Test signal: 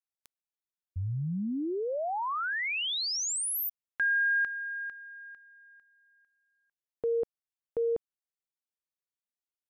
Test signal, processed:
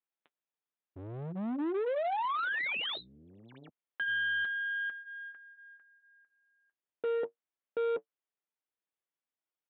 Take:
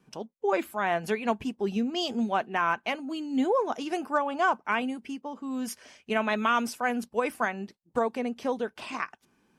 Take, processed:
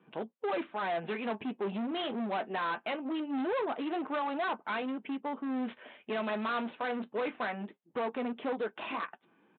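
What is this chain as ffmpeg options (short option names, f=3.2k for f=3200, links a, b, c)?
-filter_complex "[0:a]asplit=2[a][b];[b]alimiter=limit=-24dB:level=0:latency=1:release=274,volume=2dB[c];[a][c]amix=inputs=2:normalize=0,flanger=delay=6:depth=4.1:regen=-52:speed=0.22:shape=sinusoidal,aeval=exprs='0.2*(cos(1*acos(clip(val(0)/0.2,-1,1)))-cos(1*PI/2))+0.00708*(cos(7*acos(clip(val(0)/0.2,-1,1)))-cos(7*PI/2))+0.0141*(cos(8*acos(clip(val(0)/0.2,-1,1)))-cos(8*PI/2))':c=same,aresample=8000,asoftclip=type=hard:threshold=-31.5dB,aresample=44100,highpass=240,aemphasis=mode=reproduction:type=75kf,volume=3dB"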